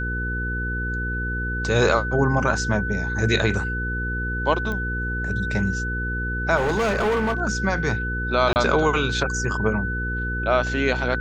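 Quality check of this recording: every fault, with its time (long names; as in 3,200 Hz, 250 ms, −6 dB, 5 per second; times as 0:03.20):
mains hum 60 Hz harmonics 8 −28 dBFS
whistle 1,500 Hz −27 dBFS
0:04.72: click −17 dBFS
0:06.56–0:07.41: clipping −18.5 dBFS
0:08.53–0:08.56: drop-out 29 ms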